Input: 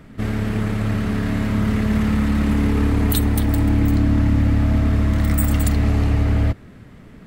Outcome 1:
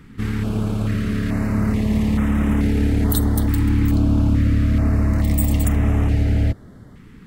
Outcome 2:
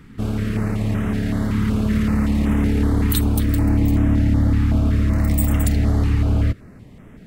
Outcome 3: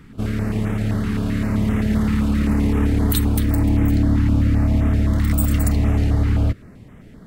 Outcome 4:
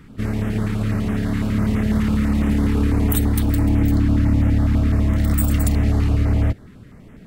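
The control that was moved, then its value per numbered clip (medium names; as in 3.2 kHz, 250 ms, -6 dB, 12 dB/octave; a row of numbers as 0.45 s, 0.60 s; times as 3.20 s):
step-sequenced notch, rate: 2.3 Hz, 5.3 Hz, 7.7 Hz, 12 Hz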